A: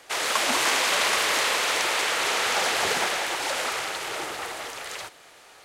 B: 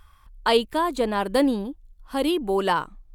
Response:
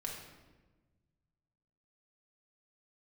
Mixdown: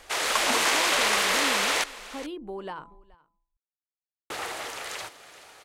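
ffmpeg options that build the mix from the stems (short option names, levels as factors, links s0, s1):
-filter_complex "[0:a]volume=0.944,asplit=3[s0][s1][s2];[s0]atrim=end=1.84,asetpts=PTS-STARTPTS,afade=t=out:st=1.836:d=0.004:c=hsin[s3];[s1]atrim=start=1.84:end=4.3,asetpts=PTS-STARTPTS,volume=0[s4];[s2]atrim=start=4.3,asetpts=PTS-STARTPTS,afade=t=in:d=0.004:c=hsin[s5];[s3][s4][s5]concat=n=3:v=0:a=1,asplit=2[s6][s7];[s7]volume=0.133[s8];[1:a]aemphasis=mode=reproduction:type=50fm,bandreject=f=167.6:t=h:w=4,bandreject=f=335.2:t=h:w=4,bandreject=f=502.8:t=h:w=4,bandreject=f=670.4:t=h:w=4,bandreject=f=838:t=h:w=4,bandreject=f=1005.6:t=h:w=4,acompressor=threshold=0.0631:ratio=3,volume=0.316,asplit=2[s9][s10];[s10]volume=0.0668[s11];[s8][s11]amix=inputs=2:normalize=0,aecho=0:1:425:1[s12];[s6][s9][s12]amix=inputs=3:normalize=0"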